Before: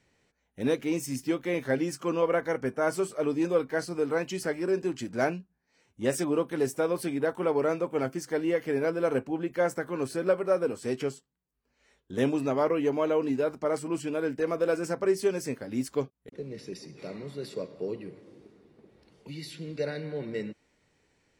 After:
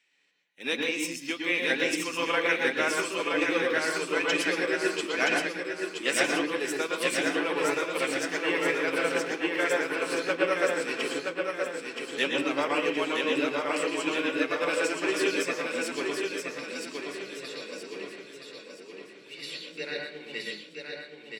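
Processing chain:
high-pass filter 260 Hz 12 dB per octave
parametric band 3,100 Hz +14.5 dB 1.8 octaves
repeating echo 973 ms, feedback 54%, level −3 dB
convolution reverb RT60 0.45 s, pre-delay 112 ms, DRR 2 dB
expander for the loud parts 1.5 to 1, over −39 dBFS

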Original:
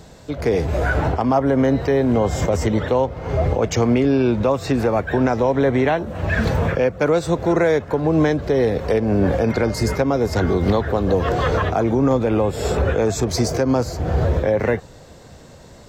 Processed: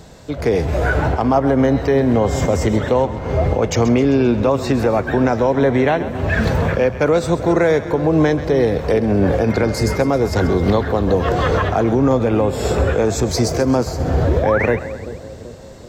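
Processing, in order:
sound drawn into the spectrogram rise, 0:14.27–0:14.66, 260–2,600 Hz −24 dBFS
echo with a time of its own for lows and highs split 630 Hz, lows 385 ms, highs 132 ms, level −13 dB
level +2 dB

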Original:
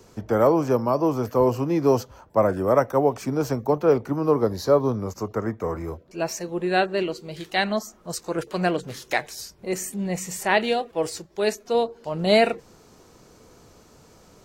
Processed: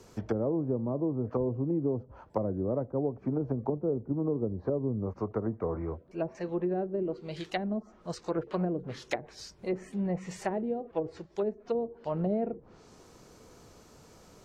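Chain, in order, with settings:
treble cut that deepens with the level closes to 370 Hz, closed at −20 dBFS
0:03.67–0:06.35: parametric band 7,100 Hz −14.5 dB 2.6 octaves
downward compressor, threshold −22 dBFS, peak gain reduction 6 dB
level −3 dB

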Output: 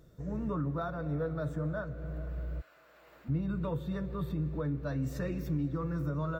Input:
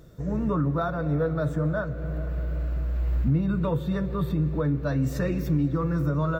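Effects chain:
0:02.60–0:03.28: high-pass filter 1,200 Hz → 490 Hz 12 dB per octave
level −8.5 dB

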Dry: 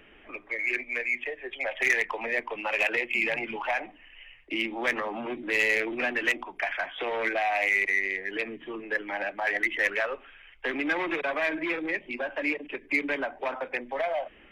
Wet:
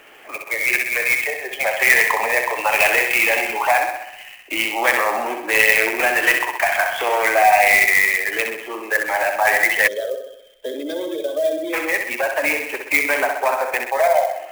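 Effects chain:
spectral tilt +3 dB per octave
on a send: feedback echo with a high-pass in the loop 64 ms, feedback 60%, high-pass 200 Hz, level −5.5 dB
on the sum: gain on a spectral selection 0:09.87–0:11.73, 660–3,100 Hz −22 dB
parametric band 760 Hz +12.5 dB 2.1 octaves
gate on every frequency bin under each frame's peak −30 dB strong
converter with an unsteady clock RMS 0.022 ms
level +2 dB

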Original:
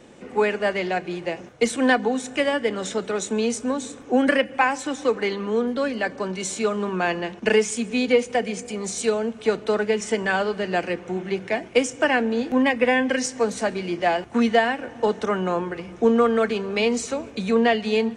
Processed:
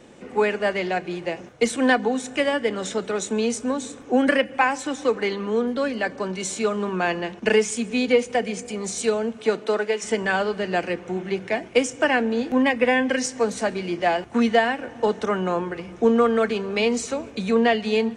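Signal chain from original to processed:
0:09.37–0:10.02: high-pass filter 110 Hz → 460 Hz 12 dB per octave

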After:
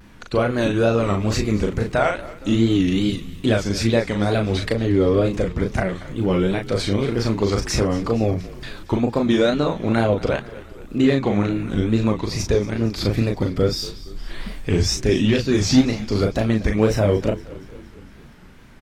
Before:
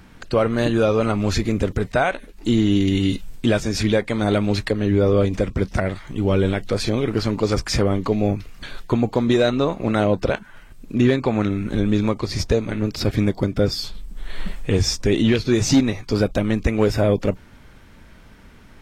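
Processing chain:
double-tracking delay 37 ms −4 dB
tape wow and flutter 130 cents
echo with shifted repeats 232 ms, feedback 62%, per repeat −48 Hz, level −18 dB
level −1.5 dB

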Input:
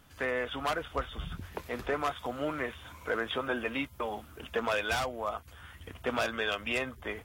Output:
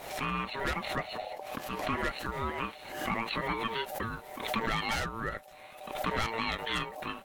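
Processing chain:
ring modulation 680 Hz
surface crackle 380 per second −66 dBFS
background raised ahead of every attack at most 62 dB per second
level +1.5 dB

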